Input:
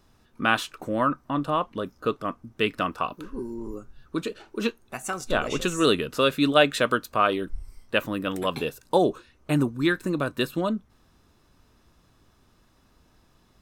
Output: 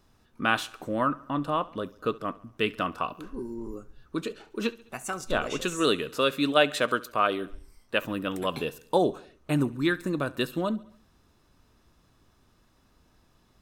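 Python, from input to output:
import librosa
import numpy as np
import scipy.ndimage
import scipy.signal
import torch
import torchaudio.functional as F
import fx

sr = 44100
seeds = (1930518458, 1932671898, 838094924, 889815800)

y = fx.low_shelf(x, sr, hz=150.0, db=-7.5, at=(5.46, 8.02))
y = fx.echo_feedback(y, sr, ms=69, feedback_pct=54, wet_db=-21.0)
y = F.gain(torch.from_numpy(y), -2.5).numpy()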